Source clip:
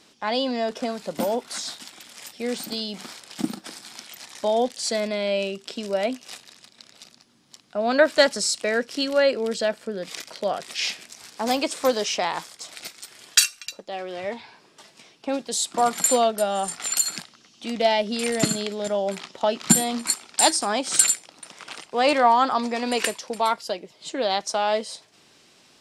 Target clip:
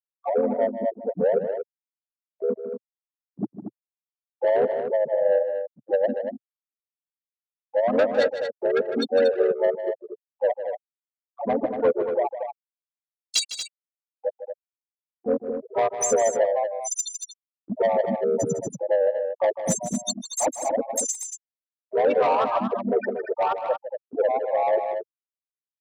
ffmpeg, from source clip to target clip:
-filter_complex "[0:a]acompressor=mode=upward:threshold=-44dB:ratio=2.5,afftfilt=real='re*gte(hypot(re,im),0.447)':imag='im*gte(hypot(re,im),0.447)':win_size=1024:overlap=0.75,agate=range=-19dB:threshold=-43dB:ratio=16:detection=peak,aeval=exprs='0.708*(cos(1*acos(clip(val(0)/0.708,-1,1)))-cos(1*PI/2))+0.00708*(cos(7*acos(clip(val(0)/0.708,-1,1)))-cos(7*PI/2))':c=same,acompressor=threshold=-23dB:ratio=3,asplit=3[a][b][c];[b]asetrate=37084,aresample=44100,atempo=1.18921,volume=-1dB[d];[c]asetrate=58866,aresample=44100,atempo=0.749154,volume=-15dB[e];[a][d][e]amix=inputs=3:normalize=0,asoftclip=type=tanh:threshold=-20.5dB,equalizer=f=125:t=o:w=1:g=9,equalizer=f=250:t=o:w=1:g=4,equalizer=f=500:t=o:w=1:g=11,equalizer=f=1k:t=o:w=1:g=5,equalizer=f=2k:t=o:w=1:g=6,equalizer=f=4k:t=o:w=1:g=9,equalizer=f=8k:t=o:w=1:g=9,aecho=1:1:154.5|233.2:0.282|0.398,adynamicequalizer=threshold=0.0178:dfrequency=3000:dqfactor=0.7:tfrequency=3000:tqfactor=0.7:attack=5:release=100:ratio=0.375:range=3:mode=cutabove:tftype=highshelf,volume=-5.5dB"

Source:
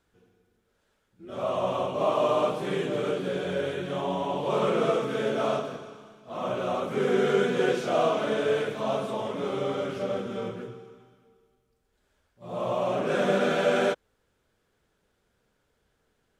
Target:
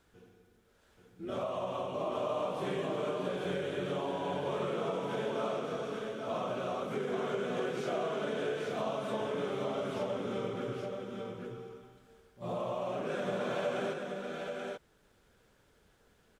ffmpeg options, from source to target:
-af "acompressor=threshold=-38dB:ratio=6,aecho=1:1:831:0.631,volume=4dB"

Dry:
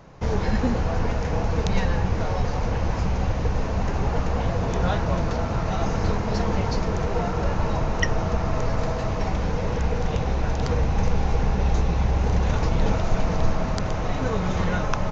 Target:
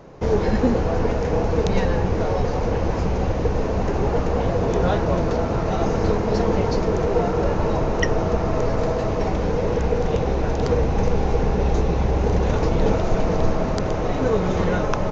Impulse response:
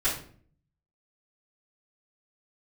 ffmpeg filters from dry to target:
-af "equalizer=f=400:t=o:w=1.4:g=9.5"

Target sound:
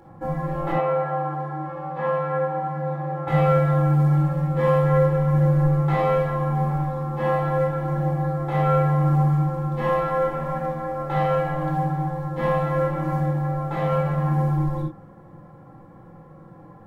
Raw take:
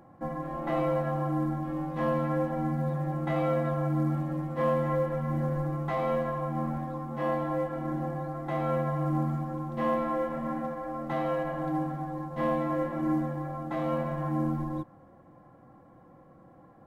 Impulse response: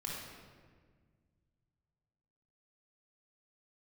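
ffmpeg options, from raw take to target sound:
-filter_complex "[0:a]asettb=1/sr,asplit=3[a][b][c];[a]atrim=end=0.724[d];[b]atrim=start=0.72:end=3.28,asetpts=PTS-STARTPTS,afade=t=in:d=0.004:c=qsin,afade=t=out:st=2.556:d=0.004:c=qsin,bandpass=f=910:t=q:w=0.6:csg=0[e];[c]atrim=start=3.276[f];[d][e]acrossfade=d=0.004:c1=hsin:c2=qsin[g];[g][f]acrossfade=d=0.004:c1=qsin:c2=hsin[h];[1:a]atrim=start_sample=2205,atrim=end_sample=3969[i];[h][i]afir=irnorm=-1:irlink=0,volume=8.5dB"

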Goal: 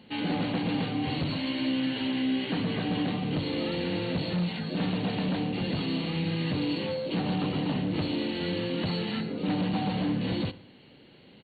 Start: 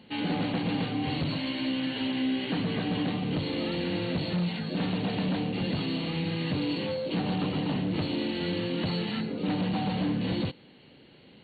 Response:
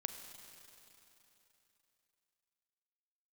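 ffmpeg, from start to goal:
-filter_complex "[0:a]asplit=2[a][b];[b]adelay=61,lowpass=f=2k:p=1,volume=-15dB,asplit=2[c][d];[d]adelay=61,lowpass=f=2k:p=1,volume=0.51,asplit=2[e][f];[f]adelay=61,lowpass=f=2k:p=1,volume=0.51,asplit=2[g][h];[h]adelay=61,lowpass=f=2k:p=1,volume=0.51,asplit=2[i][j];[j]adelay=61,lowpass=f=2k:p=1,volume=0.51[k];[a][c][e][g][i][k]amix=inputs=6:normalize=0"

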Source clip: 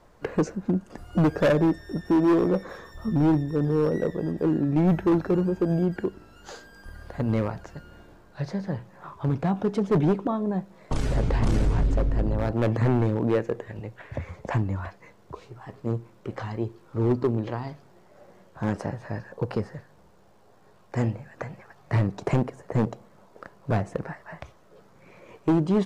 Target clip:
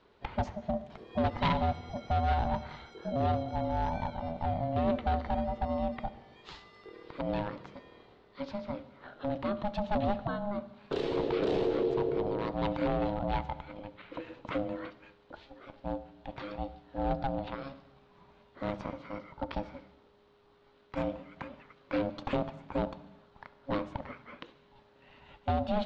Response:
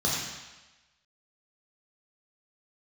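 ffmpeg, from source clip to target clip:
-filter_complex "[0:a]lowpass=f=3.5k:t=q:w=3.9,aeval=exprs='val(0)*sin(2*PI*410*n/s)':c=same,asplit=2[a][b];[1:a]atrim=start_sample=2205,adelay=67[c];[b][c]afir=irnorm=-1:irlink=0,volume=-28dB[d];[a][d]amix=inputs=2:normalize=0,volume=-5.5dB"

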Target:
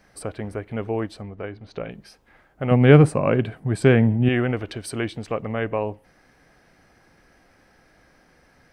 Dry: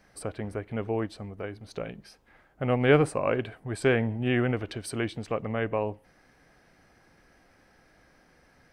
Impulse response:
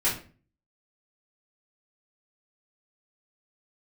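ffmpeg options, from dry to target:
-filter_complex "[0:a]asettb=1/sr,asplit=3[a][b][c];[a]atrim=end=1.224[d];[b]atrim=start=1.22:end=1.91,asetpts=PTS-STARTPTS,afade=t=in:d=0.004:c=qsin,afade=t=out:st=0.686:d=0.004:c=qsin,lowpass=3.9k[e];[c]atrim=start=1.906[f];[d][e]acrossfade=d=0.004:c1=hsin:c2=qsin[g];[g][f]acrossfade=d=0.004:c1=qsin:c2=hsin,asettb=1/sr,asplit=3[h][i][j];[h]atrim=end=2.714[k];[i]atrim=start=2.71:end=4.29,asetpts=PTS-STARTPTS,afade=t=in:d=0.004:c=qsin,afade=t=out:st=1.576:d=0.004:c=qsin,equalizer=f=160:w=0.8:g=10.5[l];[j]atrim=start=4.286[m];[k][l]acrossfade=d=0.004:c1=hsin:c2=qsin[n];[n][m]acrossfade=d=0.004:c1=qsin:c2=hsin,volume=3.5dB"

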